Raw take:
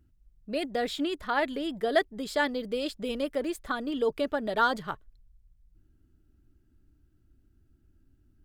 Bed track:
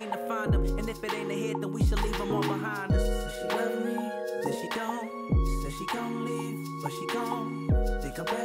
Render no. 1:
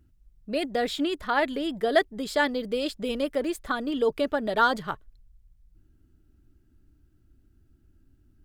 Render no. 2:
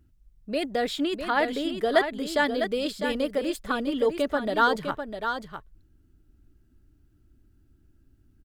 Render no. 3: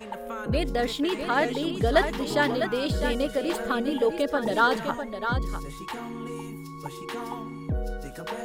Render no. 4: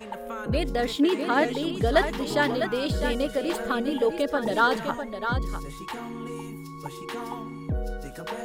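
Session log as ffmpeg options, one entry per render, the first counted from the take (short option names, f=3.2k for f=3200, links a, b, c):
-af "volume=3dB"
-af "aecho=1:1:653:0.422"
-filter_complex "[1:a]volume=-3.5dB[a];[0:a][a]amix=inputs=2:normalize=0"
-filter_complex "[0:a]asettb=1/sr,asplit=3[a][b][c];[a]atrim=end=0.964[d];[b]atrim=start=0.96:end=1.44,asetpts=PTS-STARTPTS,afade=t=in:d=0.004:c=qsin,afade=t=out:st=0.476:d=0.004:c=qsin,highpass=f=260:t=q:w=1.9[e];[c]atrim=start=1.436[f];[d][e]acrossfade=d=0.004:c1=hsin:c2=qsin[g];[g][f]acrossfade=d=0.004:c1=qsin:c2=hsin"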